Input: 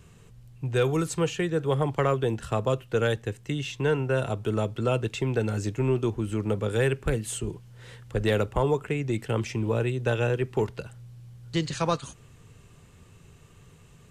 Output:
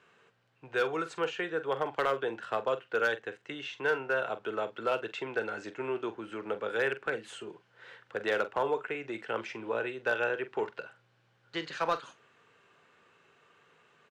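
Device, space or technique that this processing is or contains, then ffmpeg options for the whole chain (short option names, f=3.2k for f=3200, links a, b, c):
megaphone: -filter_complex "[0:a]highpass=490,lowpass=3.2k,equalizer=f=1.5k:t=o:w=0.36:g=7,asoftclip=type=hard:threshold=-18.5dB,asplit=2[a][b];[b]adelay=44,volume=-13dB[c];[a][c]amix=inputs=2:normalize=0,volume=-2dB"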